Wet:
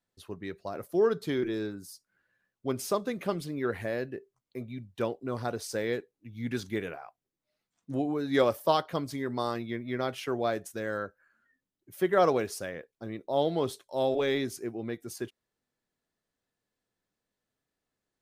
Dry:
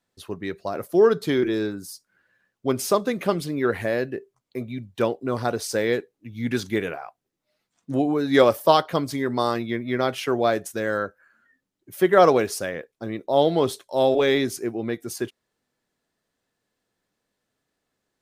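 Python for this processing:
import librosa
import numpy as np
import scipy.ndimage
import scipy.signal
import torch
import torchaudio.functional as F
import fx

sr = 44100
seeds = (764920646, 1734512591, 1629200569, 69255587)

y = fx.low_shelf(x, sr, hz=97.0, db=5.5)
y = y * 10.0 ** (-8.5 / 20.0)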